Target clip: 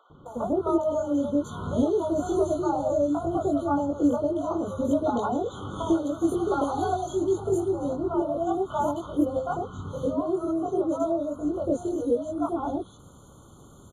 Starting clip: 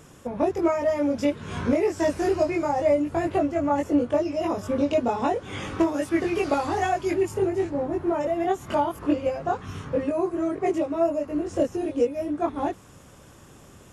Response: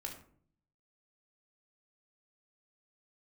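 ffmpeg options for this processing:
-filter_complex "[0:a]acrossover=split=650|3000[a][b][c];[a]adelay=100[d];[c]adelay=260[e];[d][b][e]amix=inputs=3:normalize=0,afftfilt=real='re*eq(mod(floor(b*sr/1024/1500),2),0)':imag='im*eq(mod(floor(b*sr/1024/1500),2),0)':win_size=1024:overlap=0.75"

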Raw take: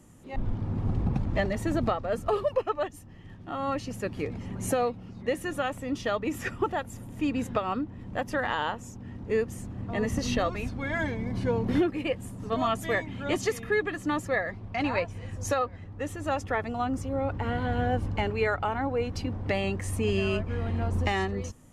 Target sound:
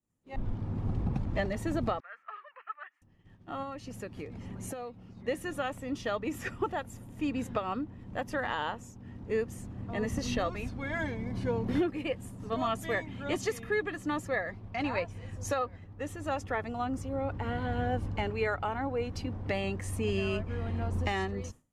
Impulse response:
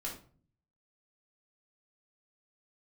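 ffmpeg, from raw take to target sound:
-filter_complex "[0:a]agate=range=-33dB:threshold=-39dB:ratio=3:detection=peak,asettb=1/sr,asplit=3[a][b][c];[a]atrim=end=2.004[d];[b]atrim=start=2:end=3.02,asetpts=PTS-STARTPTS,afade=t=in:d=0.004:c=qsin,afade=t=out:st=1.016:d=0.004:c=qsin,asuperpass=centerf=1700:order=4:qfactor=1.8[e];[c]atrim=start=3.016[f];[d][e]acrossfade=d=0.004:c1=hsin:c2=qsin[g];[g][f]acrossfade=d=0.004:c1=qsin:c2=hsin,asettb=1/sr,asplit=3[h][i][j];[h]atrim=end=3.624[k];[i]atrim=start=3.62:end=5.11,asetpts=PTS-STARTPTS,afade=t=in:d=0.004:c=qsin,afade=t=out:st=1.486:d=0.004:c=qsin,acompressor=threshold=-33dB:ratio=6[l];[j]atrim=start=5.106[m];[k][l]acrossfade=d=0.004:c1=hsin:c2=qsin[n];[n][m]acrossfade=d=0.004:c1=qsin:c2=hsin,volume=-4dB"

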